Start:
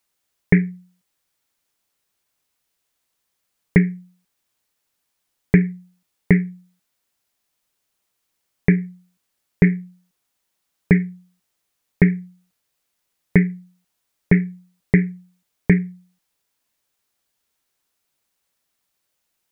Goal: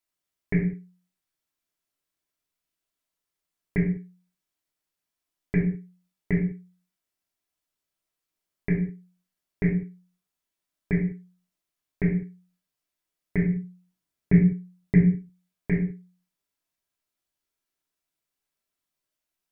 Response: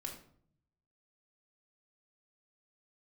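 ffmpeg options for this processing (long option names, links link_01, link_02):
-filter_complex "[0:a]asettb=1/sr,asplit=3[link_01][link_02][link_03];[link_01]atrim=end=13.434[link_04];[link_02]atrim=start=13.43:end=15.09,asetpts=PTS-STARTPTS,afade=type=in:duration=0.004:curve=qsin,afade=type=out:start_time=1.656:duration=0.004:curve=qsin,equalizer=frequency=140:width_type=o:width=2.2:gain=8[link_05];[link_03]atrim=start=15.086[link_06];[link_04][link_05]acrossfade=duration=0.004:curve1=hsin:curve2=qsin[link_07];[link_07][link_06]acrossfade=duration=0.004:curve1=qsin:curve2=hsin[link_08];[1:a]atrim=start_sample=2205,afade=type=out:start_time=0.28:duration=0.01,atrim=end_sample=12789,asetrate=48510,aresample=44100[link_09];[link_08][link_09]afir=irnorm=-1:irlink=0,volume=-7.5dB"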